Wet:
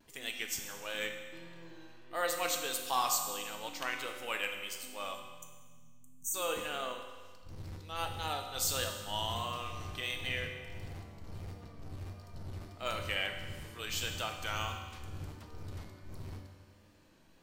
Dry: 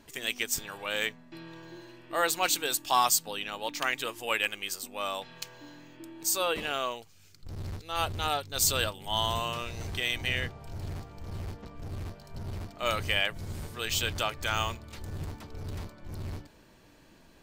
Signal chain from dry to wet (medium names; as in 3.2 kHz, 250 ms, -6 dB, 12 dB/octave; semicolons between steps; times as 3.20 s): spectral selection erased 5.15–6.34 s, 260–5700 Hz; vibrato 1.5 Hz 55 cents; on a send: reverberation RT60 1.5 s, pre-delay 4 ms, DRR 3 dB; on the sum: trim -8 dB